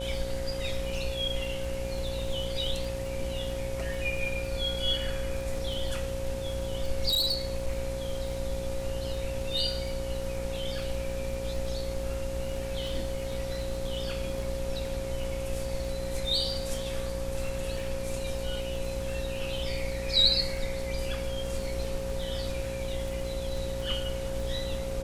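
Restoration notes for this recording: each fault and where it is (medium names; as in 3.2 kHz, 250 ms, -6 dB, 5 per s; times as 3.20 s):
buzz 60 Hz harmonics 16 -37 dBFS
crackle 31 per s -37 dBFS
whine 540 Hz -35 dBFS
7.08–7.71 s: clipped -23 dBFS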